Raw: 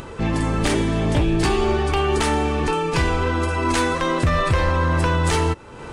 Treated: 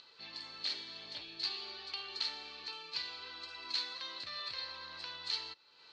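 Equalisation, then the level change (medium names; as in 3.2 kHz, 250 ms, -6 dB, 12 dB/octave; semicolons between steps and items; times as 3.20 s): band-pass filter 4.3 kHz, Q 17; distance through air 130 m; +9.5 dB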